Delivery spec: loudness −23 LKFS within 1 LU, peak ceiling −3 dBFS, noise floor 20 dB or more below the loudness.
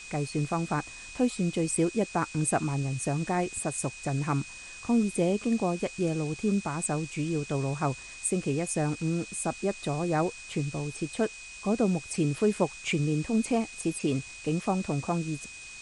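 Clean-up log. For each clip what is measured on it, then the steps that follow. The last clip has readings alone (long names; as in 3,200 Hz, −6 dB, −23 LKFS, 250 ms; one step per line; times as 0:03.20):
interfering tone 2,500 Hz; level of the tone −44 dBFS; background noise floor −45 dBFS; target noise floor −50 dBFS; integrated loudness −29.5 LKFS; sample peak −12.5 dBFS; target loudness −23.0 LKFS
→ notch filter 2,500 Hz, Q 30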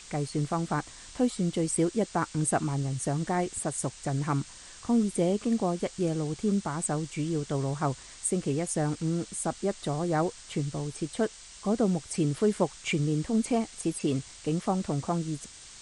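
interfering tone none found; background noise floor −48 dBFS; target noise floor −50 dBFS
→ broadband denoise 6 dB, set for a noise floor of −48 dBFS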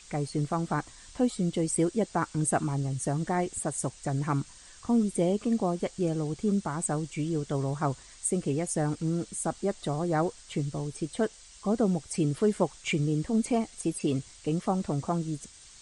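background noise floor −52 dBFS; integrated loudness −30.0 LKFS; sample peak −12.5 dBFS; target loudness −23.0 LKFS
→ level +7 dB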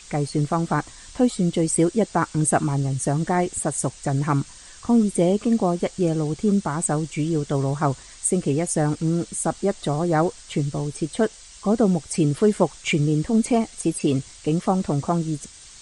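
integrated loudness −23.0 LKFS; sample peak −5.5 dBFS; background noise floor −45 dBFS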